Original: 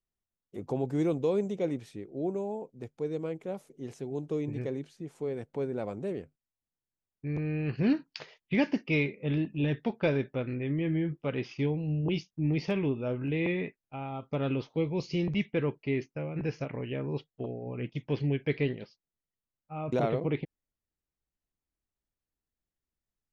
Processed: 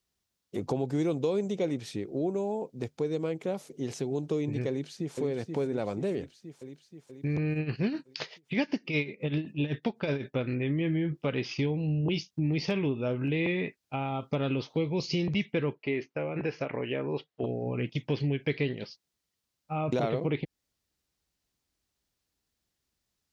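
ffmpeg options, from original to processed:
ffmpeg -i in.wav -filter_complex "[0:a]asplit=2[link_01][link_02];[link_02]afade=type=in:start_time=4.69:duration=0.01,afade=type=out:start_time=5.19:duration=0.01,aecho=0:1:480|960|1440|1920|2400|2880|3360|3840|4320|4800:0.501187|0.325772|0.211752|0.137639|0.0894651|0.0581523|0.037799|0.0245693|0.0159701|0.0103805[link_03];[link_01][link_03]amix=inputs=2:normalize=0,asplit=3[link_04][link_05][link_06];[link_04]afade=type=out:start_time=7.53:duration=0.02[link_07];[link_05]tremolo=f=7.9:d=0.76,afade=type=in:start_time=7.53:duration=0.02,afade=type=out:start_time=10.35:duration=0.02[link_08];[link_06]afade=type=in:start_time=10.35:duration=0.02[link_09];[link_07][link_08][link_09]amix=inputs=3:normalize=0,asettb=1/sr,asplit=3[link_10][link_11][link_12];[link_10]atrim=end=15.734[link_13];[link_11]atrim=start=15.73:end=17.43,asetpts=PTS-STARTPTS,afade=type=in:duration=0.004:curve=qsin,afade=type=out:start_time=1.696:duration=0.004:curve=qsin,bass=frequency=250:gain=-10,treble=frequency=4000:gain=-14[link_14];[link_12]atrim=start=17.426[link_15];[link_13][link_14]acrossfade=duration=0.004:curve1=hsin:curve2=qsin[link_16];[link_16][link_15]acrossfade=duration=0.004:curve1=qsin:curve2=hsin,highpass=50,equalizer=frequency=4700:width_type=o:width=1.4:gain=7,acompressor=threshold=-38dB:ratio=2.5,volume=8.5dB" out.wav

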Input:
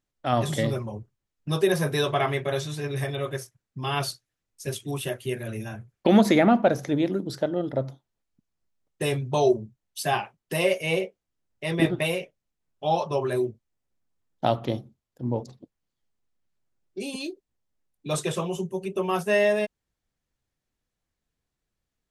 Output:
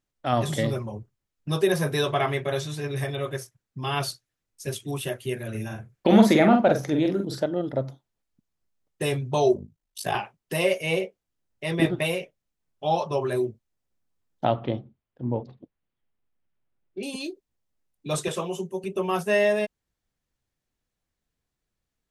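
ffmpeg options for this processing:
ffmpeg -i in.wav -filter_complex "[0:a]asettb=1/sr,asplit=3[link_01][link_02][link_03];[link_01]atrim=end=5.504[link_04];[link_02]atrim=start=5.5:end=7.44,asetpts=PTS-STARTPTS,afade=type=in:duration=0.004:curve=qsin,afade=type=out:start_time=1.936:duration=0.004:curve=qsin,asplit=2[link_05][link_06];[link_06]adelay=45,volume=-4.5dB[link_07];[link_05][link_07]amix=inputs=2:normalize=0,atrim=end_sample=85554[link_08];[link_03]atrim=start=7.436[link_09];[link_04][link_08]acrossfade=duration=0.004:curve1=hsin:curve2=qsin[link_10];[link_10][link_09]acrossfade=duration=0.004:curve1=qsin:curve2=hsin,asettb=1/sr,asplit=3[link_11][link_12][link_13];[link_11]atrim=end=9.544[link_14];[link_12]atrim=start=9.54:end=10.15,asetpts=PTS-STARTPTS,afade=type=in:duration=0.004:curve=qsin,afade=type=out:start_time=0.606:duration=0.004:curve=qsin,aeval=exprs='val(0)*sin(2*PI*26*n/s)':channel_layout=same[link_15];[link_13]atrim=start=10.146[link_16];[link_14][link_15]acrossfade=duration=0.004:curve1=hsin:curve2=qsin[link_17];[link_17][link_16]acrossfade=duration=0.004:curve1=qsin:curve2=hsin,asettb=1/sr,asplit=3[link_18][link_19][link_20];[link_18]atrim=end=14.444[link_21];[link_19]atrim=start=14.44:end=17.03,asetpts=PTS-STARTPTS,afade=type=in:duration=0.004:curve=qsin,afade=type=out:start_time=2.586:duration=0.004:curve=qsin,lowpass=frequency=3300:width=0.5412,lowpass=frequency=3300:width=1.3066[link_22];[link_20]atrim=start=17.026[link_23];[link_21][link_22]acrossfade=duration=0.004:curve1=hsin:curve2=qsin[link_24];[link_24][link_23]acrossfade=duration=0.004:curve1=qsin:curve2=hsin,asettb=1/sr,asplit=3[link_25][link_26][link_27];[link_25]atrim=end=18.284[link_28];[link_26]atrim=start=18.28:end=18.84,asetpts=PTS-STARTPTS,afade=type=in:duration=0.004:curve=qsin,afade=type=out:start_time=0.556:duration=0.004:curve=qsin,highpass=200[link_29];[link_27]atrim=start=18.836[link_30];[link_28][link_29]acrossfade=duration=0.004:curve1=hsin:curve2=qsin[link_31];[link_31][link_30]acrossfade=duration=0.004:curve1=qsin:curve2=hsin" out.wav

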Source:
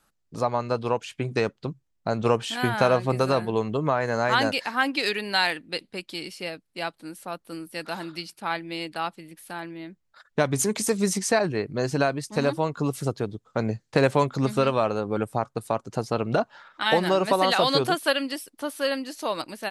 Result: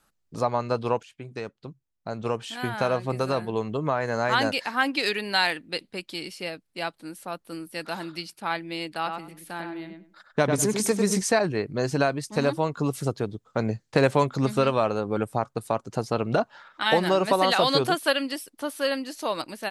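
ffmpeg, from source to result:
ffmpeg -i in.wav -filter_complex "[0:a]asettb=1/sr,asplit=3[link_01][link_02][link_03];[link_01]atrim=end=8.964[link_04];[link_02]atrim=start=8.96:end=11.22,asetpts=PTS-STARTPTS,afade=type=in:duration=0.004:curve=qsin,afade=type=out:start_time=2.256:duration=0.004:curve=qsin,asplit=2[link_05][link_06];[link_06]adelay=99,lowpass=frequency=2200:poles=1,volume=-4.5dB,asplit=2[link_07][link_08];[link_08]adelay=99,lowpass=frequency=2200:poles=1,volume=0.21,asplit=2[link_09][link_10];[link_10]adelay=99,lowpass=frequency=2200:poles=1,volume=0.21[link_11];[link_05][link_07][link_09][link_11]amix=inputs=4:normalize=0,atrim=end_sample=99666[link_12];[link_03]atrim=start=11.216[link_13];[link_04][link_12]acrossfade=duration=0.004:curve1=hsin:curve2=qsin[link_14];[link_14][link_13]acrossfade=duration=0.004:curve1=qsin:curve2=hsin,asplit=2[link_15][link_16];[link_15]atrim=end=1.03,asetpts=PTS-STARTPTS,afade=type=out:start_time=1.026:duration=0.004:curve=hsin:silence=0.237137[link_17];[link_16]atrim=start=1.03,asetpts=PTS-STARTPTS,afade=type=in:duration=3.88:silence=0.237137[link_18];[link_17][link_18]concat=n=2:v=0:a=1" out.wav

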